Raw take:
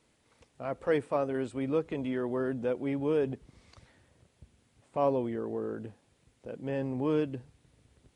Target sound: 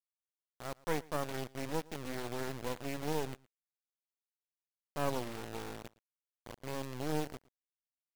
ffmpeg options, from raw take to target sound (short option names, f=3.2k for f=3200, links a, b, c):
-af "acrusher=bits=3:dc=4:mix=0:aa=0.000001,aeval=exprs='0.188*(cos(1*acos(clip(val(0)/0.188,-1,1)))-cos(1*PI/2))+0.00944*(cos(7*acos(clip(val(0)/0.188,-1,1)))-cos(7*PI/2))':c=same,aecho=1:1:114:0.0668,volume=-4dB"